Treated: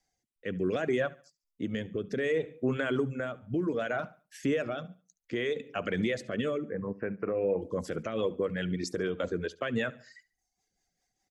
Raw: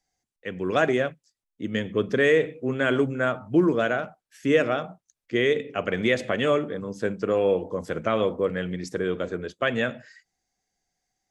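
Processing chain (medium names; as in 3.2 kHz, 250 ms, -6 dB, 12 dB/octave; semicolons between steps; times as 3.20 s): 6.58–7.62 s: elliptic low-pass 2.4 kHz, stop band 40 dB; reverb removal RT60 0.65 s; compression, threshold -25 dBFS, peak gain reduction 10.5 dB; peak limiter -22.5 dBFS, peak gain reduction 9 dB; rotary cabinet horn 0.65 Hz, later 5 Hz, at 6.95 s; feedback delay 71 ms, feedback 35%, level -21 dB; trim +3.5 dB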